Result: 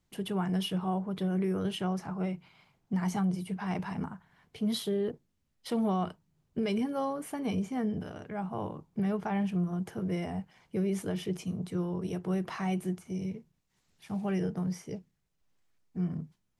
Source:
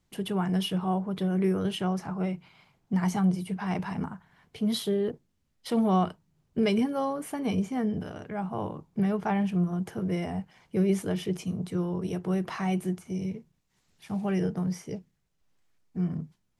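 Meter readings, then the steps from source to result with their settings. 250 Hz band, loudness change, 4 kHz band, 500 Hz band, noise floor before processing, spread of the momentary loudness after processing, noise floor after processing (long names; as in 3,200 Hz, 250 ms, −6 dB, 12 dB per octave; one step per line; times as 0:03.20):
−4.0 dB, −4.0 dB, −3.5 dB, −4.0 dB, −74 dBFS, 9 LU, −77 dBFS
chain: brickwall limiter −20 dBFS, peak gain reduction 5 dB
level −3 dB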